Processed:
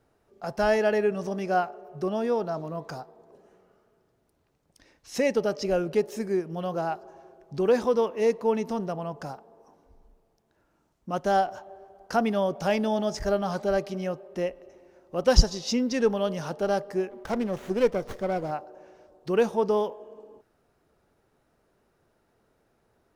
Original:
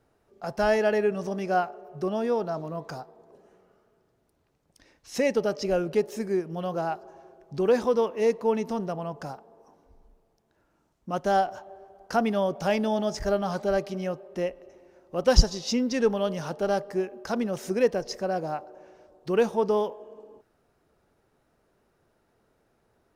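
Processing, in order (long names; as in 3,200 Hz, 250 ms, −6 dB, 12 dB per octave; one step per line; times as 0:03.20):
0:17.10–0:18.51: windowed peak hold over 9 samples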